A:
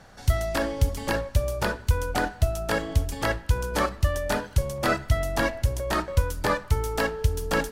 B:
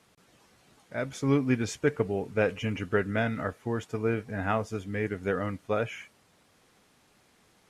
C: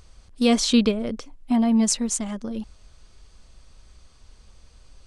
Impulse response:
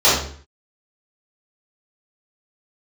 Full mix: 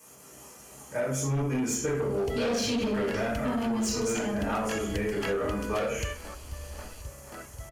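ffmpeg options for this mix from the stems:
-filter_complex "[0:a]adelay=2000,volume=-5dB,asplit=2[a][b];[b]volume=-15.5dB[c];[1:a]acontrast=73,aexciter=amount=8.3:drive=5:freq=6.7k,volume=-9dB,asplit=3[d][e][f];[e]volume=-13dB[g];[2:a]adelay=1950,volume=-1dB,asplit=2[h][i];[i]volume=-18.5dB[j];[f]apad=whole_len=428454[k];[a][k]sidechaingate=range=-33dB:threshold=-52dB:ratio=16:detection=peak[l];[l][h]amix=inputs=2:normalize=0,equalizer=f=2.8k:w=1:g=13,acompressor=threshold=-22dB:ratio=6,volume=0dB[m];[3:a]atrim=start_sample=2205[n];[g][j]amix=inputs=2:normalize=0[o];[o][n]afir=irnorm=-1:irlink=0[p];[c]aecho=0:1:486|972|1458|1944|2430|2916:1|0.42|0.176|0.0741|0.0311|0.0131[q];[d][m][p][q]amix=inputs=4:normalize=0,bandreject=f=3.7k:w=5.7,asoftclip=type=tanh:threshold=-14dB,acompressor=threshold=-27dB:ratio=6"

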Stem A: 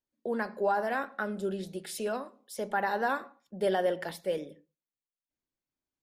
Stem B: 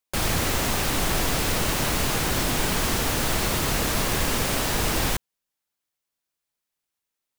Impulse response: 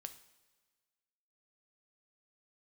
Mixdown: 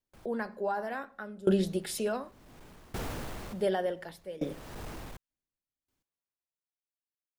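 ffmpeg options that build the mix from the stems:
-filter_complex "[0:a]lowshelf=f=130:g=7.5,volume=1.5dB,asplit=3[a][b][c];[a]atrim=end=2.47,asetpts=PTS-STARTPTS,afade=t=out:st=2.466:d=0.004:c=hsin[d];[b]atrim=start=2.47:end=3.36,asetpts=PTS-STARTPTS,volume=0[e];[c]atrim=start=3.36,asetpts=PTS-STARTPTS,afade=t=in:d=0.004:c=hsin[f];[d][e][f]concat=n=3:v=0:a=1,asplit=2[g][h];[1:a]asoftclip=type=tanh:threshold=-24.5dB,highshelf=f=2k:g=-10.5,volume=-11.5dB,afade=t=in:st=1.73:d=0.77:silence=0.298538[i];[h]apad=whole_len=325559[j];[i][j]sidechaincompress=threshold=-44dB:ratio=8:attack=6.2:release=372[k];[g][k]amix=inputs=2:normalize=0,dynaudnorm=f=300:g=5:m=8dB,aeval=exprs='val(0)*pow(10,-22*if(lt(mod(0.68*n/s,1),2*abs(0.68)/1000),1-mod(0.68*n/s,1)/(2*abs(0.68)/1000),(mod(0.68*n/s,1)-2*abs(0.68)/1000)/(1-2*abs(0.68)/1000))/20)':c=same"

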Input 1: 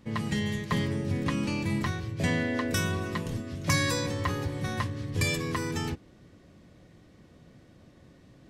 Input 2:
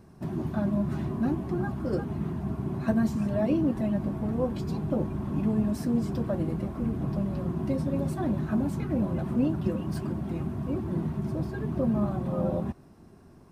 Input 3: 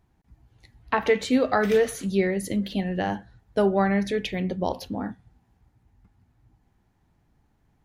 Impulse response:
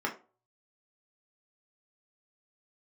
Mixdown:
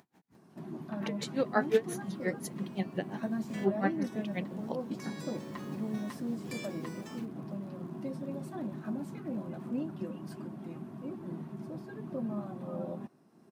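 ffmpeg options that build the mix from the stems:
-filter_complex "[0:a]acrusher=bits=7:mix=0:aa=0.000001,adelay=1300,volume=-14.5dB[a];[1:a]adelay=350,volume=-9dB[b];[2:a]aeval=exprs='val(0)*pow(10,-34*(0.5-0.5*cos(2*PI*5.7*n/s))/20)':c=same,volume=-3dB,asplit=2[c][d];[d]apad=whole_len=432068[e];[a][e]sidechaincompress=threshold=-42dB:ratio=8:attack=34:release=552[f];[f][b][c]amix=inputs=3:normalize=0,highpass=f=160:w=0.5412,highpass=f=160:w=1.3066,acompressor=mode=upward:threshold=-53dB:ratio=2.5"

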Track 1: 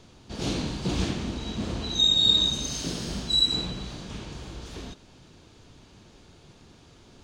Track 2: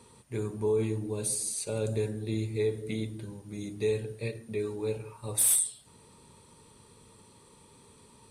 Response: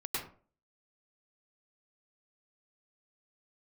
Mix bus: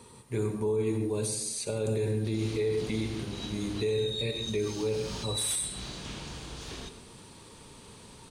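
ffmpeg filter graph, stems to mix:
-filter_complex "[0:a]tiltshelf=f=970:g=-3.5,acrossover=split=120[a][b];[b]acompressor=threshold=-33dB:ratio=2.5[c];[a][c]amix=inputs=2:normalize=0,adelay=1950,volume=-2.5dB,asplit=2[d][e];[e]volume=-11.5dB[f];[1:a]acrossover=split=7500[g][h];[h]acompressor=threshold=-46dB:ratio=4:attack=1:release=60[i];[g][i]amix=inputs=2:normalize=0,volume=2.5dB,asplit=3[j][k][l];[k]volume=-10.5dB[m];[l]apad=whole_len=405094[n];[d][n]sidechaincompress=threshold=-41dB:ratio=8:attack=6.1:release=167[o];[2:a]atrim=start_sample=2205[p];[f][m]amix=inputs=2:normalize=0[q];[q][p]afir=irnorm=-1:irlink=0[r];[o][j][r]amix=inputs=3:normalize=0,alimiter=limit=-21.5dB:level=0:latency=1:release=22"

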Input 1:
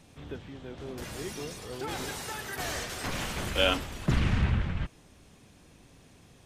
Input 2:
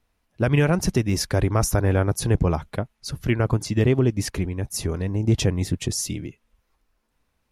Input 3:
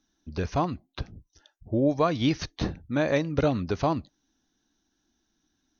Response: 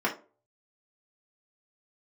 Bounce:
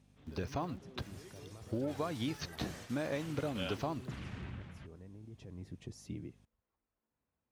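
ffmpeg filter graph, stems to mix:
-filter_complex "[0:a]aeval=exprs='val(0)+0.00631*(sin(2*PI*50*n/s)+sin(2*PI*2*50*n/s)/2+sin(2*PI*3*50*n/s)/3+sin(2*PI*4*50*n/s)/4+sin(2*PI*5*50*n/s)/5)':c=same,volume=-16.5dB[a];[1:a]lowpass=f=1k:p=1,alimiter=limit=-20dB:level=0:latency=1:release=41,volume=-12dB,afade=t=in:st=5.39:d=0.75:silence=0.251189[b];[2:a]acompressor=threshold=-29dB:ratio=6,aeval=exprs='val(0)*gte(abs(val(0)),0.00282)':c=same,volume=-4.5dB[c];[a][b][c]amix=inputs=3:normalize=0,highpass=81"

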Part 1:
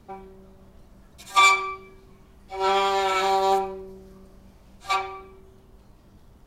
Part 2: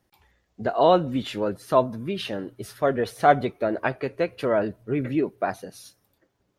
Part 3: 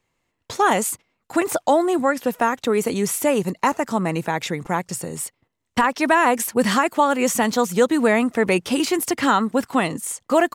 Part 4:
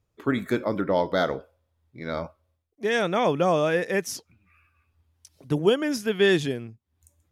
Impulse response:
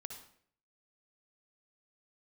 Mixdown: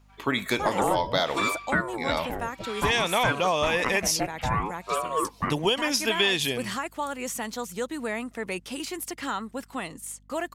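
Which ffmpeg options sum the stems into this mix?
-filter_complex "[0:a]highpass=f=1.1k:w=0.5412,highpass=f=1.1k:w=1.3066,volume=-13.5dB[a];[1:a]lowpass=f=2.6k:w=0.5412,lowpass=f=2.6k:w=1.3066,aeval=exprs='val(0)*sin(2*PI*520*n/s+520*0.65/0.6*sin(2*PI*0.6*n/s))':c=same,volume=-1dB[b];[2:a]equalizer=f=12k:w=0.58:g=5.5,aeval=exprs='val(0)+0.00891*(sin(2*PI*50*n/s)+sin(2*PI*2*50*n/s)/2+sin(2*PI*3*50*n/s)/3+sin(2*PI*4*50*n/s)/4+sin(2*PI*5*50*n/s)/5)':c=same,volume=-15dB[c];[3:a]firequalizer=gain_entry='entry(360,0);entry(960,11);entry(1400,1);entry(2400,11)':delay=0.05:min_phase=1,volume=-3dB[d];[a][b][c][d]amix=inputs=4:normalize=0,equalizer=f=3.2k:t=o:w=2.8:g=4.5,acompressor=threshold=-20dB:ratio=6"

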